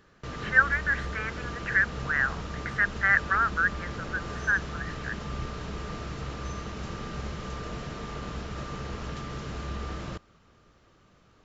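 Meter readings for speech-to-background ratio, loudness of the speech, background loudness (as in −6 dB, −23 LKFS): 10.5 dB, −26.5 LKFS, −37.0 LKFS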